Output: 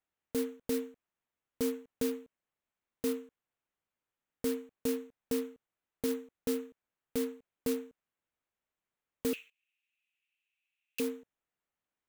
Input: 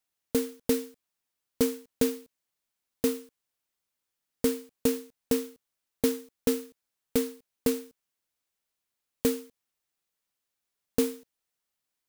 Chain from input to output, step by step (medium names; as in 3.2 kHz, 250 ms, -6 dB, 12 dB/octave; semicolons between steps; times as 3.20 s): local Wiener filter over 9 samples; peak limiter -21.5 dBFS, peak gain reduction 10 dB; 9.33–11.00 s: resonant high-pass 2.6 kHz, resonance Q 10